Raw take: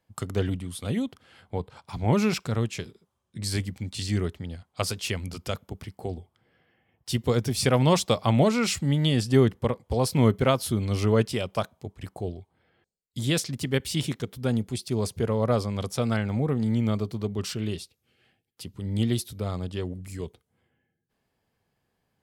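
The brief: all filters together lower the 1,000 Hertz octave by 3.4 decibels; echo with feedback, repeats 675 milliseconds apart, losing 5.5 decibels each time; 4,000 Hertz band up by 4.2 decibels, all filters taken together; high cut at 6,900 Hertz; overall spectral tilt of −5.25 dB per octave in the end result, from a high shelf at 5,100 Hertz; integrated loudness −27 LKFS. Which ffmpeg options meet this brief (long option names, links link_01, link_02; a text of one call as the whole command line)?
ffmpeg -i in.wav -af "lowpass=6900,equalizer=frequency=1000:width_type=o:gain=-5,equalizer=frequency=4000:width_type=o:gain=3.5,highshelf=frequency=5100:gain=6,aecho=1:1:675|1350|2025|2700|3375|4050|4725:0.531|0.281|0.149|0.079|0.0419|0.0222|0.0118,volume=-1dB" out.wav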